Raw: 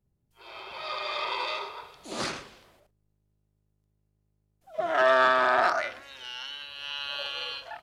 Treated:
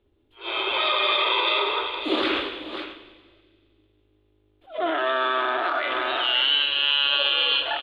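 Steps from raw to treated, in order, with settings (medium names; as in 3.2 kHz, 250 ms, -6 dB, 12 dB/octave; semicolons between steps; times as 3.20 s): multi-tap echo 188/540 ms -19.5/-17 dB; compression 3:1, threshold -32 dBFS, peak gain reduction 11 dB; peak limiter -29 dBFS, peak gain reduction 8.5 dB; FFT filter 100 Hz 0 dB, 150 Hz -21 dB, 310 Hz +14 dB, 710 Hz +4 dB, 1.2 kHz +7 dB, 1.9 kHz +6 dB, 3.5 kHz +14 dB, 5.7 kHz -22 dB, 9.1 kHz -17 dB; feedback echo behind a high-pass 93 ms, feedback 75%, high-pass 2.4 kHz, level -18.5 dB; on a send at -14 dB: reverberation RT60 1.9 s, pre-delay 7 ms; on the sum: attacks held to a fixed rise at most 200 dB/s; trim +7.5 dB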